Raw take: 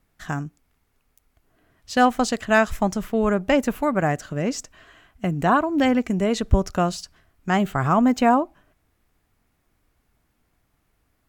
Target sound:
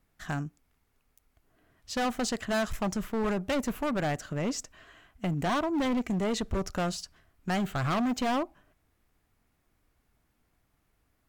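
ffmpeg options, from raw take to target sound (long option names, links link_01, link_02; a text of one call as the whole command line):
ffmpeg -i in.wav -af "asoftclip=type=hard:threshold=-21.5dB,volume=-4dB" out.wav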